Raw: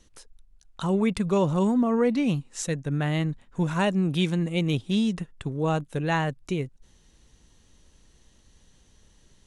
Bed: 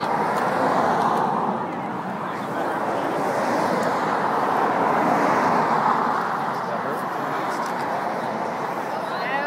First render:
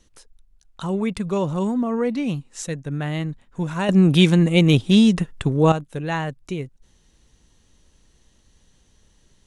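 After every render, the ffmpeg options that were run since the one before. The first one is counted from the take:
ffmpeg -i in.wav -filter_complex "[0:a]asplit=3[link_01][link_02][link_03];[link_01]atrim=end=3.892[link_04];[link_02]atrim=start=3.888:end=5.722,asetpts=PTS-STARTPTS,volume=10dB[link_05];[link_03]atrim=start=5.718[link_06];[link_04][link_05]acrossfade=duration=0.004:curve1=hsin:curve2=hsin[link_07];[link_07][link_06]acrossfade=duration=0.004:curve1=hsin:curve2=hsin" out.wav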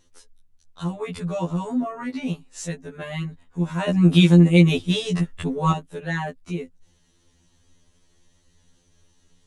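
ffmpeg -i in.wav -filter_complex "[0:a]acrossover=split=4700[link_01][link_02];[link_02]volume=24dB,asoftclip=hard,volume=-24dB[link_03];[link_01][link_03]amix=inputs=2:normalize=0,afftfilt=real='re*2*eq(mod(b,4),0)':imag='im*2*eq(mod(b,4),0)':win_size=2048:overlap=0.75" out.wav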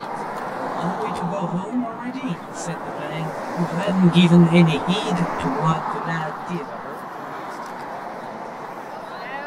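ffmpeg -i in.wav -i bed.wav -filter_complex "[1:a]volume=-6.5dB[link_01];[0:a][link_01]amix=inputs=2:normalize=0" out.wav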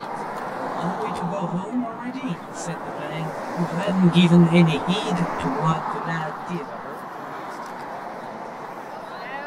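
ffmpeg -i in.wav -af "volume=-1.5dB" out.wav

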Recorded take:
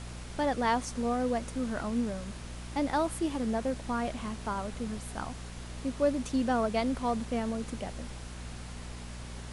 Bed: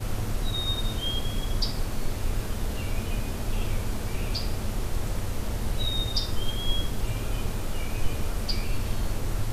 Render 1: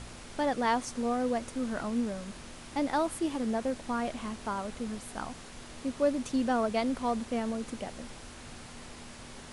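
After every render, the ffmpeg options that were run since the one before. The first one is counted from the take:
ffmpeg -i in.wav -af "bandreject=frequency=60:width_type=h:width=4,bandreject=frequency=120:width_type=h:width=4,bandreject=frequency=180:width_type=h:width=4" out.wav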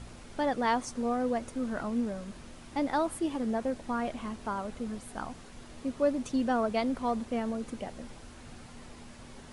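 ffmpeg -i in.wav -af "afftdn=noise_reduction=6:noise_floor=-47" out.wav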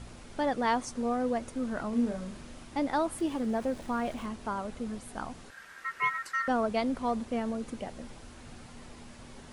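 ffmpeg -i in.wav -filter_complex "[0:a]asettb=1/sr,asplit=3[link_01][link_02][link_03];[link_01]atrim=end=1.894[link_04];[link_02]atrim=start=1.89:end=2.64,asetpts=PTS-STARTPTS,afade=type=in:duration=0.004:curve=qsin,afade=type=out:start_time=0.746:duration=0.004:curve=qsin,asplit=2[link_05][link_06];[link_06]adelay=38,volume=-5dB[link_07];[link_05][link_07]amix=inputs=2:normalize=0,atrim=end_sample=33075[link_08];[link_03]atrim=start=2.636[link_09];[link_04][link_08]acrossfade=duration=0.004:curve1=hsin:curve2=qsin[link_10];[link_10][link_09]acrossfade=duration=0.004:curve1=qsin:curve2=hsin,asettb=1/sr,asplit=3[link_11][link_12][link_13];[link_11]atrim=end=3.184[link_14];[link_12]atrim=start=3.18:end=4.26,asetpts=PTS-STARTPTS,afade=type=in:duration=0.004:curve=qsin,afade=type=out:start_time=1.076:duration=0.004:curve=qsin,aeval=exprs='val(0)+0.5*0.00376*sgn(val(0))':channel_layout=same[link_15];[link_13]atrim=start=4.256[link_16];[link_14][link_15]acrossfade=duration=0.004:curve1=hsin:curve2=qsin[link_17];[link_17][link_16]acrossfade=duration=0.004:curve1=qsin:curve2=hsin,asettb=1/sr,asplit=3[link_18][link_19][link_20];[link_18]atrim=end=5.504[link_21];[link_19]atrim=start=5.5:end=6.48,asetpts=PTS-STARTPTS,afade=type=in:duration=0.004:curve=qsin,afade=type=out:start_time=0.976:duration=0.004:curve=qsin,aeval=exprs='val(0)*sin(2*PI*1600*n/s)':channel_layout=same[link_22];[link_20]atrim=start=6.476[link_23];[link_21][link_22]acrossfade=duration=0.004:curve1=hsin:curve2=qsin[link_24];[link_24][link_23]acrossfade=duration=0.004:curve1=qsin:curve2=hsin" out.wav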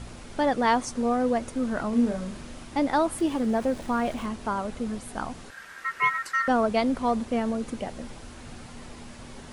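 ffmpeg -i in.wav -af "volume=5.5dB" out.wav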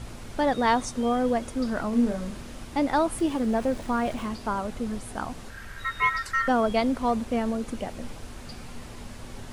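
ffmpeg -i in.wav -i bed.wav -filter_complex "[1:a]volume=-15.5dB[link_01];[0:a][link_01]amix=inputs=2:normalize=0" out.wav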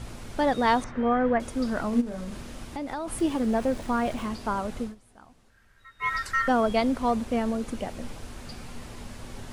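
ffmpeg -i in.wav -filter_complex "[0:a]asettb=1/sr,asplit=3[link_01][link_02][link_03];[link_01]atrim=end=0.844[link_04];[link_02]atrim=start=0.84:end=1.4,asetpts=PTS-STARTPTS,afade=type=in:duration=0.004:curve=qsin,afade=type=out:start_time=0.556:duration=0.004:curve=qsin,lowpass=frequency=1800:width_type=q:width=2.3[link_05];[link_03]atrim=start=1.396[link_06];[link_04][link_05]acrossfade=duration=0.004:curve1=hsin:curve2=qsin[link_07];[link_07][link_06]acrossfade=duration=0.004:curve1=qsin:curve2=hsin,asplit=3[link_08][link_09][link_10];[link_08]afade=type=out:start_time=2:duration=0.02[link_11];[link_09]acompressor=threshold=-30dB:ratio=5:attack=3.2:release=140:knee=1:detection=peak,afade=type=in:start_time=2:duration=0.02,afade=type=out:start_time=3.07:duration=0.02[link_12];[link_10]afade=type=in:start_time=3.07:duration=0.02[link_13];[link_11][link_12][link_13]amix=inputs=3:normalize=0,asplit=3[link_14][link_15][link_16];[link_14]atrim=end=4.95,asetpts=PTS-STARTPTS,afade=type=out:start_time=4.81:duration=0.14:silence=0.1[link_17];[link_15]atrim=start=4.95:end=5.99,asetpts=PTS-STARTPTS,volume=-20dB[link_18];[link_16]atrim=start=5.99,asetpts=PTS-STARTPTS,afade=type=in:duration=0.14:silence=0.1[link_19];[link_17][link_18][link_19]concat=n=3:v=0:a=1" out.wav

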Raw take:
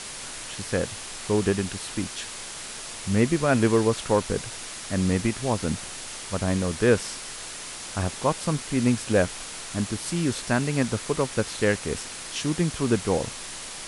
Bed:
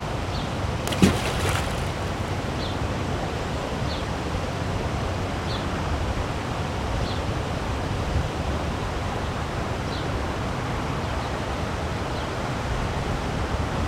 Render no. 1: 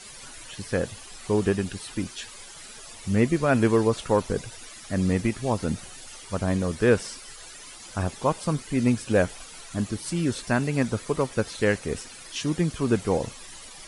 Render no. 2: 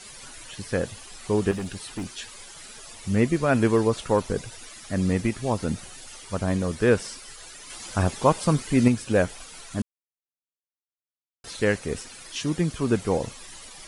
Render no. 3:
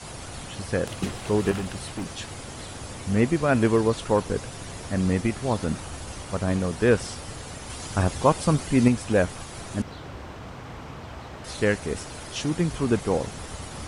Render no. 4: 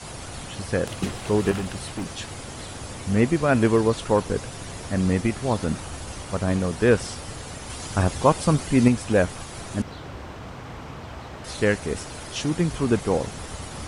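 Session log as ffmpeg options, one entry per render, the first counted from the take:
ffmpeg -i in.wav -af "afftdn=noise_reduction=13:noise_floor=-38" out.wav
ffmpeg -i in.wav -filter_complex "[0:a]asettb=1/sr,asplit=3[link_01][link_02][link_03];[link_01]atrim=end=1.514[link_04];[link_02]atrim=start=1.51:end=2.17,asetpts=PTS-STARTPTS,afade=type=in:duration=0.004:curve=qsin,afade=type=out:start_time=0.656:duration=0.004:curve=qsin,volume=27dB,asoftclip=hard,volume=-27dB[link_05];[link_03]atrim=start=2.166[link_06];[link_04][link_05]acrossfade=duration=0.004:curve1=hsin:curve2=qsin[link_07];[link_07][link_06]acrossfade=duration=0.004:curve1=qsin:curve2=hsin,asplit=5[link_08][link_09][link_10][link_11][link_12];[link_08]atrim=end=7.702[link_13];[link_09]atrim=start=7.698:end=8.882,asetpts=PTS-STARTPTS,volume=4.5dB[link_14];[link_10]atrim=start=8.878:end=9.82,asetpts=PTS-STARTPTS,afade=type=out:start_time=0.938:duration=0.004:curve=hsin[link_15];[link_11]atrim=start=9.82:end=11.44,asetpts=PTS-STARTPTS,volume=0[link_16];[link_12]atrim=start=11.44,asetpts=PTS-STARTPTS,afade=type=in:duration=0.004:curve=hsin[link_17];[link_13][link_14]acrossfade=duration=0.004:curve1=hsin:curve2=hsin[link_18];[link_15][link_16][link_17]concat=n=3:v=0:a=1[link_19];[link_18][link_19]acrossfade=duration=0.004:curve1=hsin:curve2=hsin" out.wav
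ffmpeg -i in.wav -i bed.wav -filter_complex "[1:a]volume=-12dB[link_01];[0:a][link_01]amix=inputs=2:normalize=0" out.wav
ffmpeg -i in.wav -af "volume=1.5dB" out.wav

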